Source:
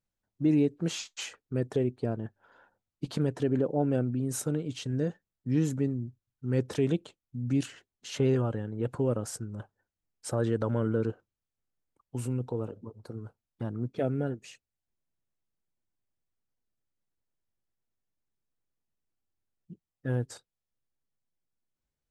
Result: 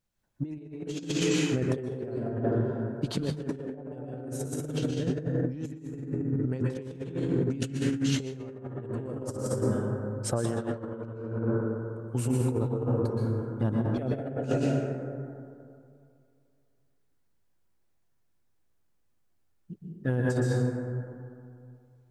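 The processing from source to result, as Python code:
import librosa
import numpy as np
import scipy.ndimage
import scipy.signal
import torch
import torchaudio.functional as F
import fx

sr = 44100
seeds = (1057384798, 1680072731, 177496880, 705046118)

y = fx.rev_plate(x, sr, seeds[0], rt60_s=2.4, hf_ratio=0.3, predelay_ms=110, drr_db=-4.5)
y = fx.over_compress(y, sr, threshold_db=-29.0, ratio=-0.5)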